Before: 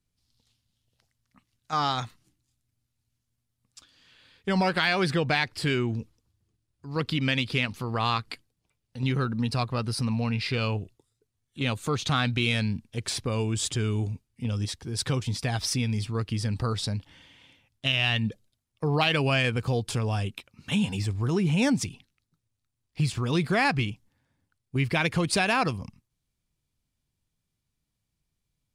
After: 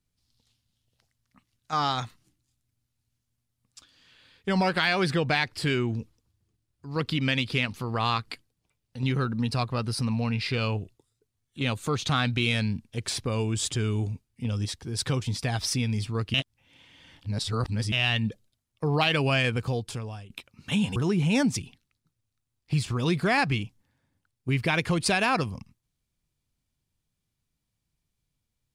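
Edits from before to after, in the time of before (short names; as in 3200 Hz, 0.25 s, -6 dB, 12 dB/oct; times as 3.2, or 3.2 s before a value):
16.34–17.92 reverse
19.55–20.3 fade out, to -21 dB
20.96–21.23 cut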